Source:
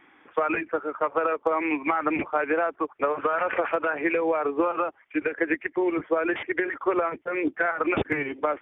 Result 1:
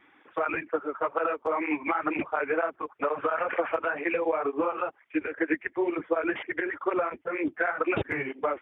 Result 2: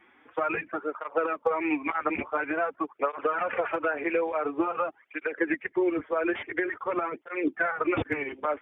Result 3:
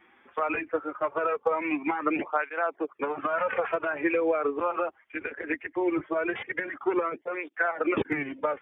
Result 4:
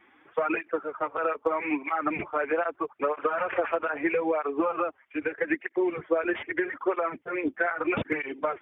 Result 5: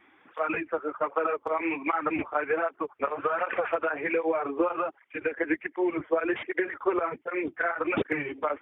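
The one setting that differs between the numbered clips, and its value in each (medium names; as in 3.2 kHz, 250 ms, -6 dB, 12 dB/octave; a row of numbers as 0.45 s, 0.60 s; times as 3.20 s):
cancelling through-zero flanger, nulls at: 2.1 Hz, 0.48 Hz, 0.2 Hz, 0.79 Hz, 1.3 Hz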